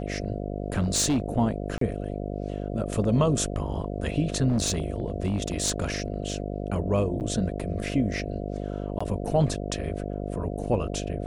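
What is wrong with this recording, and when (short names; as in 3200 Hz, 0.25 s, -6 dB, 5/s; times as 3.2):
buzz 50 Hz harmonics 14 -32 dBFS
0.78–1.2 clipped -19.5 dBFS
1.78–1.81 gap 33 ms
4.48–6.34 clipped -20 dBFS
7.2–7.21 gap 8.7 ms
8.99–9.01 gap 15 ms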